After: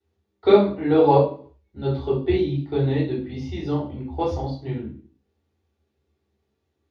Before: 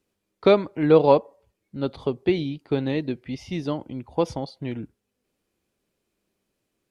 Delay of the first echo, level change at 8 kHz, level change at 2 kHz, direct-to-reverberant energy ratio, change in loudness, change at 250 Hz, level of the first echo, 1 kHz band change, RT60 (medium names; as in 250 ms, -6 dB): no echo, no reading, -2.5 dB, -12.5 dB, +1.5 dB, +1.5 dB, no echo, +3.0 dB, 0.45 s